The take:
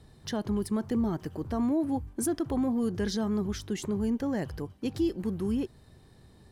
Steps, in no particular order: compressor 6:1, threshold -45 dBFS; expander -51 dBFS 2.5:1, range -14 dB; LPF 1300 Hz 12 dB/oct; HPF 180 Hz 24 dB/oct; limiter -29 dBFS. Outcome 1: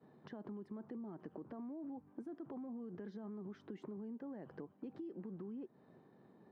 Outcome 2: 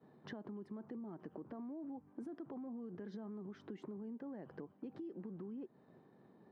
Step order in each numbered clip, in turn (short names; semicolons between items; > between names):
expander > HPF > limiter > compressor > LPF; LPF > limiter > expander > HPF > compressor